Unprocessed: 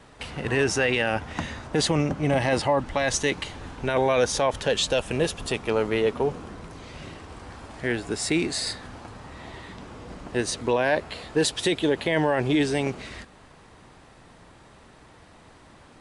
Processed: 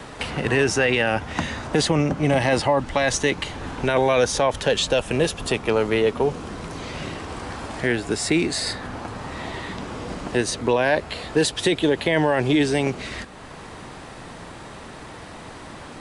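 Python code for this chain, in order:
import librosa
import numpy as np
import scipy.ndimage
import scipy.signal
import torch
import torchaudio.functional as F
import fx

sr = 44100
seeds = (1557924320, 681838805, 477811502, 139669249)

y = fx.band_squash(x, sr, depth_pct=40)
y = y * librosa.db_to_amplitude(3.5)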